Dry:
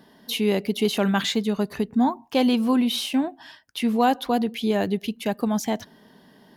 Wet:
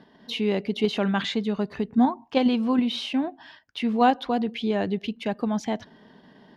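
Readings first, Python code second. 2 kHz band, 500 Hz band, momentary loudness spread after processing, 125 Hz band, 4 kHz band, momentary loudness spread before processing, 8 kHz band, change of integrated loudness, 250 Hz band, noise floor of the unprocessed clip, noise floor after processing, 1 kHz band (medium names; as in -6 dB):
-1.5 dB, -2.0 dB, 9 LU, no reading, -3.5 dB, 7 LU, under -10 dB, -1.5 dB, -1.5 dB, -55 dBFS, -57 dBFS, -0.5 dB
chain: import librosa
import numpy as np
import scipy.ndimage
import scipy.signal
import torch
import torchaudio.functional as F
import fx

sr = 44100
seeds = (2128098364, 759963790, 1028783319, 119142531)

p1 = fx.level_steps(x, sr, step_db=18)
p2 = x + (p1 * librosa.db_to_amplitude(-2.0))
p3 = scipy.signal.sosfilt(scipy.signal.butter(2, 3900.0, 'lowpass', fs=sr, output='sos'), p2)
y = p3 * librosa.db_to_amplitude(-3.5)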